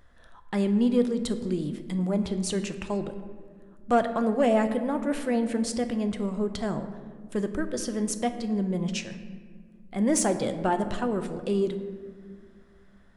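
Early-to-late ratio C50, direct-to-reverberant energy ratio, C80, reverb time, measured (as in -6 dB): 10.0 dB, 8.0 dB, 11.5 dB, 1.9 s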